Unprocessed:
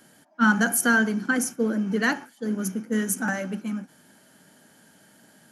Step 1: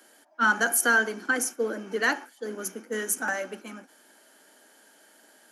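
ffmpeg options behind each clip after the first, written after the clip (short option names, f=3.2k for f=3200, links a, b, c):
-af "highpass=f=320:w=0.5412,highpass=f=320:w=1.3066"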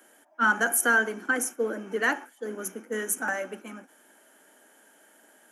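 -af "equalizer=f=4.5k:w=2.3:g=-12.5"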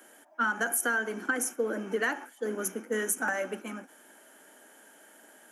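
-af "acompressor=threshold=-28dB:ratio=6,volume=2.5dB"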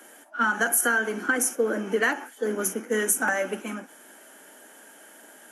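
-af "volume=5.5dB" -ar 32000 -c:a libvorbis -b:a 32k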